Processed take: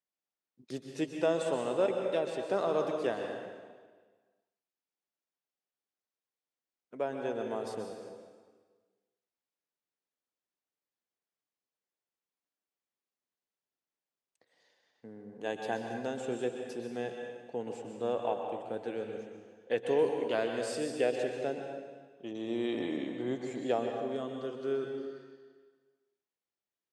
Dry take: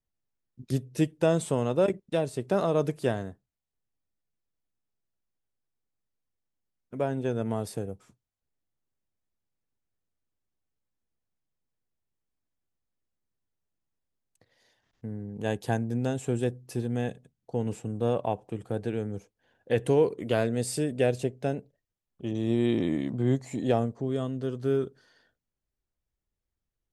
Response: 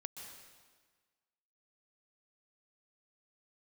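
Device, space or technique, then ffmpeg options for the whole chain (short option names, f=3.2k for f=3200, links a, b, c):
supermarket ceiling speaker: -filter_complex "[0:a]highpass=340,lowpass=6.3k[a];[1:a]atrim=start_sample=2205[b];[a][b]afir=irnorm=-1:irlink=0,volume=1dB"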